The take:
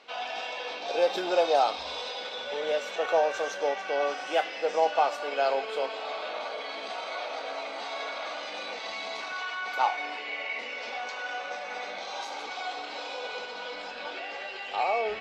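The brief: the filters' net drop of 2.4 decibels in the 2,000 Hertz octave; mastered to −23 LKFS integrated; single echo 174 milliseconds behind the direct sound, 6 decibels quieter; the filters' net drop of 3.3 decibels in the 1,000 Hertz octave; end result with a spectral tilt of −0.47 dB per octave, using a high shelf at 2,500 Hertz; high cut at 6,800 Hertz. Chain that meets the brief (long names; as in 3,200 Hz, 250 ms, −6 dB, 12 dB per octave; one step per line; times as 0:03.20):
low-pass filter 6,800 Hz
parametric band 1,000 Hz −5 dB
parametric band 2,000 Hz −6 dB
high-shelf EQ 2,500 Hz +8.5 dB
single-tap delay 174 ms −6 dB
level +8 dB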